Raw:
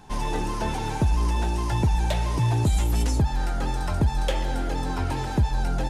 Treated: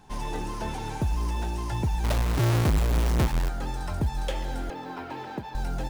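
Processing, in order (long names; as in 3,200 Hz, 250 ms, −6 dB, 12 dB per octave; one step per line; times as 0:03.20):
0:02.04–0:03.49: each half-wave held at its own peak
0:04.70–0:05.55: band-pass filter 240–3,500 Hz
floating-point word with a short mantissa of 4 bits
level −5 dB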